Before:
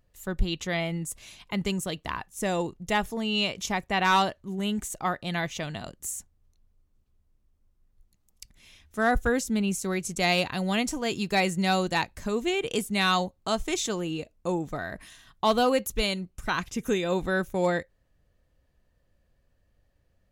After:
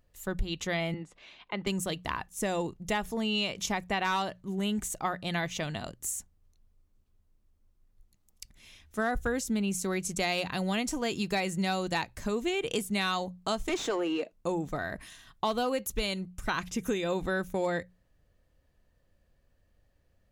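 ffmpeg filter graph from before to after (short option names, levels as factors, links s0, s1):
-filter_complex "[0:a]asettb=1/sr,asplit=3[s0][s1][s2];[s0]atrim=end=0.944[s3];[s1]atrim=start=0.94:end=1.67,asetpts=PTS-STARTPTS,afade=t=in:d=0.004:c=qsin,afade=t=out:st=0.726:d=0.004:c=qsin,lowpass=f=3800:t=q:w=1.7,acrossover=split=260 2200:gain=0.2 1 0.251[s4][s5][s6];[s4][s5][s6]amix=inputs=3:normalize=0[s7];[s2]atrim=start=1.666[s8];[s3][s7]acrossfade=d=0.004:c1=hsin:c2=qsin[s9];[s9][s8]acrossfade=d=0.004:c1=qsin:c2=hsin,asettb=1/sr,asplit=3[s10][s11][s12];[s10]atrim=end=13.694[s13];[s11]atrim=start=13.69:end=14.32,asetpts=PTS-STARTPTS,afade=t=in:d=0.004:c=qsin,afade=t=out:st=0.626:d=0.004:c=qsin,highpass=f=230:w=0.5412,highpass=f=230:w=1.3066,asplit=2[s14][s15];[s15]highpass=f=720:p=1,volume=7.94,asoftclip=type=tanh:threshold=0.15[s16];[s14][s16]amix=inputs=2:normalize=0,lowpass=f=1100:p=1,volume=0.501[s17];[s12]atrim=start=14.316[s18];[s13][s17]acrossfade=d=0.004:c1=hsin:c2=qsin[s19];[s19][s18]acrossfade=d=0.004:c1=qsin:c2=hsin,bandreject=f=60:t=h:w=6,bandreject=f=120:t=h:w=6,bandreject=f=180:t=h:w=6,acompressor=threshold=0.0501:ratio=6"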